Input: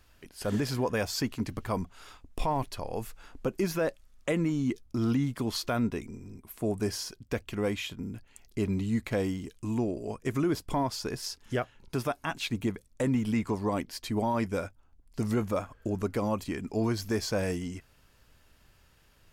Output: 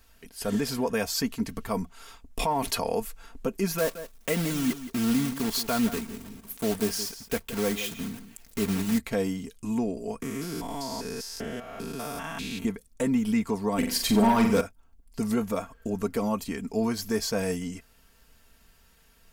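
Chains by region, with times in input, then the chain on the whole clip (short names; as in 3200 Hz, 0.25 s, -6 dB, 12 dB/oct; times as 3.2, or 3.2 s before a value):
2.39–3 HPF 140 Hz 6 dB/oct + fast leveller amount 70%
3.78–9 block floating point 3-bit + echo 0.17 s -13 dB
10.22–12.65 stepped spectrum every 0.2 s + three-band squash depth 70%
13.78–14.61 flutter echo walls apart 7.5 m, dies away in 0.46 s + sample leveller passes 2
whole clip: high shelf 7600 Hz +8 dB; comb 4.4 ms, depth 61%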